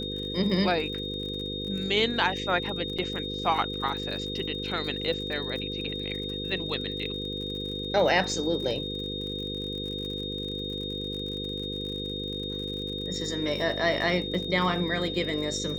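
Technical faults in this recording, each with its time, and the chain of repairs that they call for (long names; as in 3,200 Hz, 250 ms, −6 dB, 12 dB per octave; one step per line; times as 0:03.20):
mains buzz 50 Hz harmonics 10 −36 dBFS
surface crackle 48 per second −36 dBFS
whistle 3,700 Hz −34 dBFS
0:02.98–0:02.99: drop-out 5.8 ms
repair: click removal
hum removal 50 Hz, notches 10
notch filter 3,700 Hz, Q 30
repair the gap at 0:02.98, 5.8 ms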